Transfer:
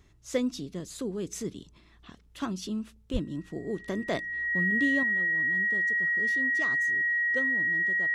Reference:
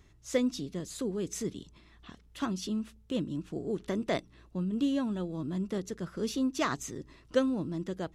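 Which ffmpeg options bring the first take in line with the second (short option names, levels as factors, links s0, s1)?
-filter_complex "[0:a]bandreject=f=1900:w=30,asplit=3[s0][s1][s2];[s0]afade=t=out:st=3.12:d=0.02[s3];[s1]highpass=f=140:w=0.5412,highpass=f=140:w=1.3066,afade=t=in:st=3.12:d=0.02,afade=t=out:st=3.24:d=0.02[s4];[s2]afade=t=in:st=3.24:d=0.02[s5];[s3][s4][s5]amix=inputs=3:normalize=0,asetnsamples=n=441:p=0,asendcmd='5.03 volume volume 9dB',volume=1"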